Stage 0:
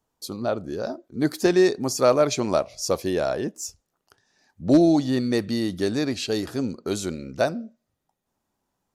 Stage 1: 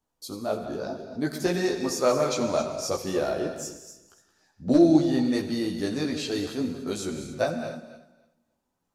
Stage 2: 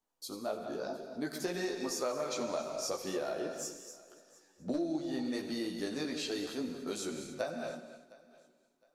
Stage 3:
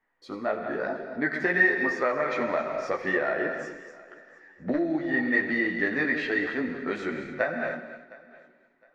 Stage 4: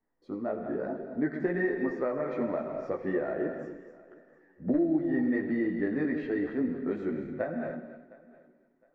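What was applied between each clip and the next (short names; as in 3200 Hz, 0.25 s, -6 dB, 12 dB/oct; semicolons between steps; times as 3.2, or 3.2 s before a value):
regenerating reverse delay 0.145 s, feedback 41%, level -11.5 dB; chorus voices 6, 0.47 Hz, delay 16 ms, depth 4.4 ms; non-linear reverb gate 0.31 s flat, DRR 7.5 dB; gain -1 dB
bell 83 Hz -14.5 dB 1.9 oct; compressor 5:1, threshold -28 dBFS, peak gain reduction 12 dB; thinning echo 0.711 s, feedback 26%, high-pass 180 Hz, level -21.5 dB; gain -4 dB
synth low-pass 1900 Hz, resonance Q 9.8; gain +7 dB
EQ curve 310 Hz 0 dB, 2200 Hz -18 dB, 4900 Hz -22 dB; gain +1.5 dB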